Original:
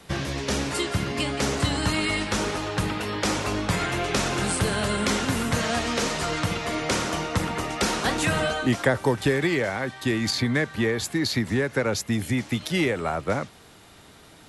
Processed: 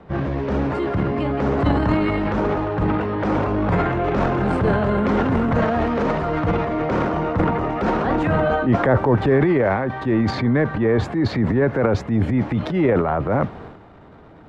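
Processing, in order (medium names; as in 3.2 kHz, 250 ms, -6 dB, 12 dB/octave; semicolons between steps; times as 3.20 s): low-pass 1.1 kHz 12 dB/octave; transient shaper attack -6 dB, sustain +5 dB, from 1.57 s sustain +10 dB; trim +7 dB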